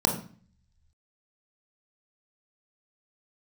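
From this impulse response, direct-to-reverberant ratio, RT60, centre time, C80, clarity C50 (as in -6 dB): 2.0 dB, 0.45 s, 21 ms, 12.0 dB, 8.0 dB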